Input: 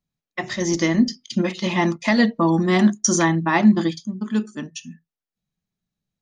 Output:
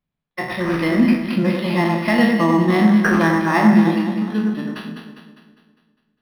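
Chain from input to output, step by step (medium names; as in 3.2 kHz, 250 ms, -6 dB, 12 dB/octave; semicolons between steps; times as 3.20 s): spectral sustain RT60 0.51 s; echo whose repeats swap between lows and highs 101 ms, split 1.9 kHz, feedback 70%, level -3.5 dB; decimation joined by straight lines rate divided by 6×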